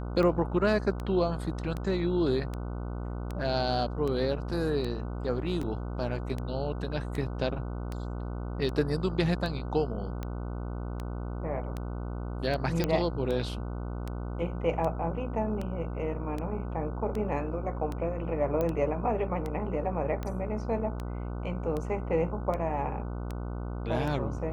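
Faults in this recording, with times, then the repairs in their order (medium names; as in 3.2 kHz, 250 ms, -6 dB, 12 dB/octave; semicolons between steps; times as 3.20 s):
buzz 60 Hz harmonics 25 -35 dBFS
tick 78 rpm -22 dBFS
5.63 s: dropout 2.1 ms
12.84 s: pop -13 dBFS
18.61 s: pop -18 dBFS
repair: de-click; de-hum 60 Hz, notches 25; interpolate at 5.63 s, 2.1 ms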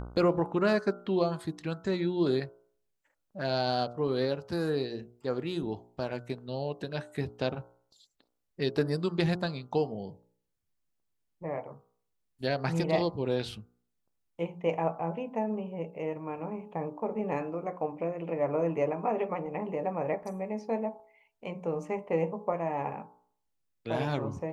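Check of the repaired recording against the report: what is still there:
nothing left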